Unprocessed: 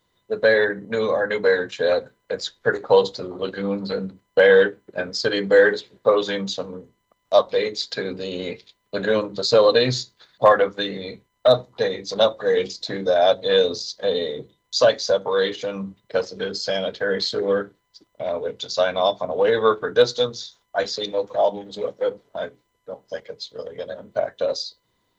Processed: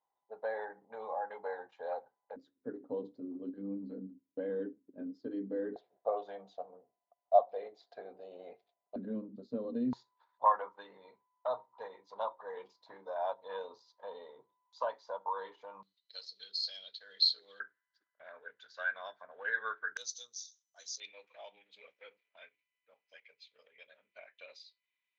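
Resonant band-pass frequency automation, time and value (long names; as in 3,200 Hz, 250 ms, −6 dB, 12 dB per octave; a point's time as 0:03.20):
resonant band-pass, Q 12
820 Hz
from 0:02.36 270 Hz
from 0:05.76 710 Hz
from 0:08.96 240 Hz
from 0:09.93 950 Hz
from 0:15.83 4,200 Hz
from 0:17.60 1,600 Hz
from 0:19.97 6,100 Hz
from 0:21.00 2,400 Hz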